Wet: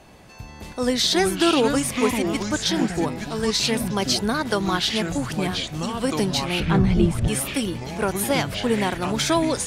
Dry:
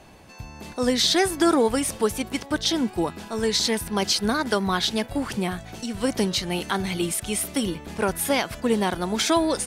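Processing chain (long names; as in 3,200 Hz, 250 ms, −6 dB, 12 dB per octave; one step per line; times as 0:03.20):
delay with pitch and tempo change per echo 87 ms, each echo −5 semitones, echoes 3, each echo −6 dB
0:06.60–0:07.28: RIAA equalisation playback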